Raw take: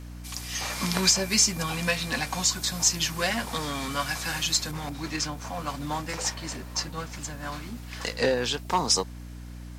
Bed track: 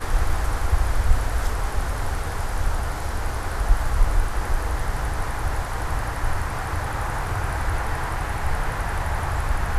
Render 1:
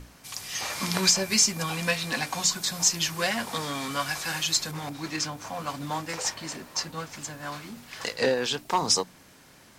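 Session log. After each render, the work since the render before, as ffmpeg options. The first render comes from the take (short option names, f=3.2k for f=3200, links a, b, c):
-af "bandreject=f=60:t=h:w=6,bandreject=f=120:t=h:w=6,bandreject=f=180:t=h:w=6,bandreject=f=240:t=h:w=6,bandreject=f=300:t=h:w=6"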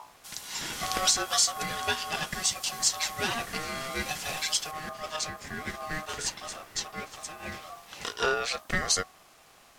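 -af "aeval=exprs='val(0)*sin(2*PI*930*n/s)':c=same"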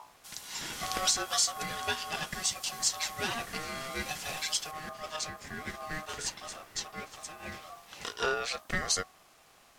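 -af "volume=-3.5dB"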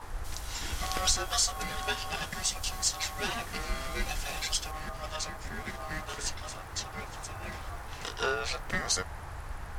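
-filter_complex "[1:a]volume=-17dB[a];[0:a][a]amix=inputs=2:normalize=0"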